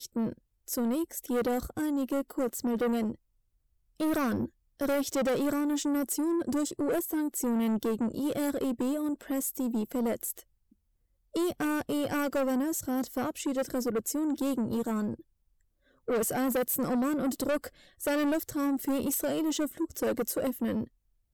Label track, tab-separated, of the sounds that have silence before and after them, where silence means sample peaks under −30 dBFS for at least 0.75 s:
4.000000	10.390000	sound
11.360000	15.140000	sound